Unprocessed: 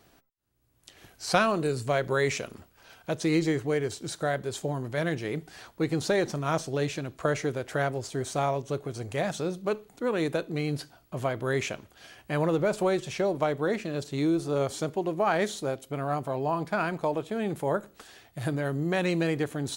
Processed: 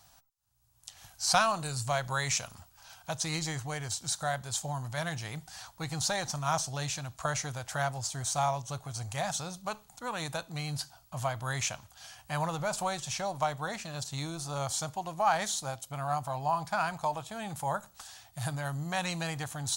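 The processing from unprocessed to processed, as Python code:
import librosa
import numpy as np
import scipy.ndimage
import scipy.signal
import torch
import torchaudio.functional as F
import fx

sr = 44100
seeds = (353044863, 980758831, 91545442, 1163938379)

y = fx.curve_eq(x, sr, hz=(120.0, 400.0, 800.0, 2100.0, 6300.0, 14000.0), db=(0, -22, 3, -5, 8, 4))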